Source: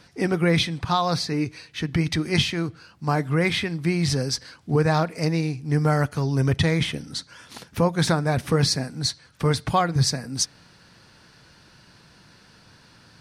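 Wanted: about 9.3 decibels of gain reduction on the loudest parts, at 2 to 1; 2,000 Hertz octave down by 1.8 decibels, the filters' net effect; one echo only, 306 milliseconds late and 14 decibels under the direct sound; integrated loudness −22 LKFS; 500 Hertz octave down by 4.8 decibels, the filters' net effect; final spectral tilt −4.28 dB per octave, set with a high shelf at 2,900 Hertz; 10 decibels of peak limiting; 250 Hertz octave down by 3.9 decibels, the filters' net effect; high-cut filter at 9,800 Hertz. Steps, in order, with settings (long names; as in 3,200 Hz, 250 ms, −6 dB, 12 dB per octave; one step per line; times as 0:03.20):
low-pass filter 9,800 Hz
parametric band 250 Hz −6.5 dB
parametric band 500 Hz −4 dB
parametric band 2,000 Hz −5 dB
high-shelf EQ 2,900 Hz +8 dB
downward compressor 2 to 1, threshold −31 dBFS
brickwall limiter −24 dBFS
single-tap delay 306 ms −14 dB
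level +12 dB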